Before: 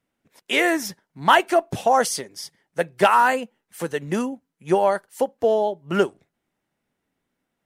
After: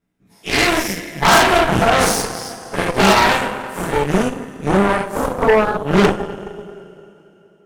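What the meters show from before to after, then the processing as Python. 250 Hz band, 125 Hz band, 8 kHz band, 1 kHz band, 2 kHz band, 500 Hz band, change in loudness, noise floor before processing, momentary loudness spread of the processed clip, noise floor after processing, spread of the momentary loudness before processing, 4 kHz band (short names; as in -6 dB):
+8.5 dB, +12.5 dB, +8.5 dB, +4.0 dB, +7.0 dB, +4.5 dB, +5.5 dB, -80 dBFS, 14 LU, -53 dBFS, 15 LU, +9.5 dB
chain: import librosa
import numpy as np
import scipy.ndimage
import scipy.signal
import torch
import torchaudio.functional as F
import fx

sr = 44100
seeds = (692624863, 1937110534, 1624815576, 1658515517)

y = fx.spec_dilate(x, sr, span_ms=120)
y = fx.low_shelf(y, sr, hz=260.0, db=10.0)
y = fx.rev_double_slope(y, sr, seeds[0], early_s=0.3, late_s=3.2, knee_db=-17, drr_db=-6.0)
y = fx.cheby_harmonics(y, sr, harmonics=(6,), levels_db=(-9,), full_scale_db=6.5)
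y = F.gain(torch.from_numpy(y), -11.0).numpy()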